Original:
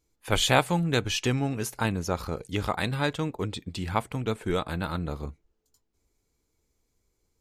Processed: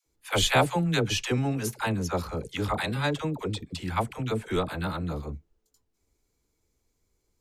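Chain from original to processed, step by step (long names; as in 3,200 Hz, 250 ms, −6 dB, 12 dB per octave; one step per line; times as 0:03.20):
all-pass dispersion lows, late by 64 ms, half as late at 560 Hz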